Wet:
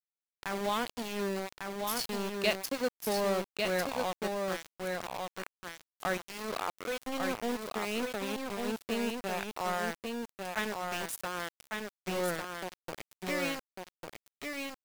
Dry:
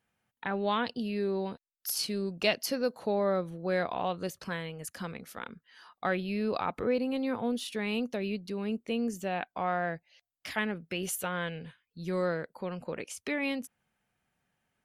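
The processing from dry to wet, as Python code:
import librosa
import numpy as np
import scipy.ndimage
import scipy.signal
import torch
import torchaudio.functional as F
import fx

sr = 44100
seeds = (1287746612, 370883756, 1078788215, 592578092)

y = fx.highpass(x, sr, hz=fx.line((6.17, 220.0), (7.05, 630.0)), slope=12, at=(6.17, 7.05), fade=0.02)
y = np.where(np.abs(y) >= 10.0 ** (-30.5 / 20.0), y, 0.0)
y = y + 10.0 ** (-4.0 / 20.0) * np.pad(y, (int(1149 * sr / 1000.0), 0))[:len(y)]
y = F.gain(torch.from_numpy(y), -2.0).numpy()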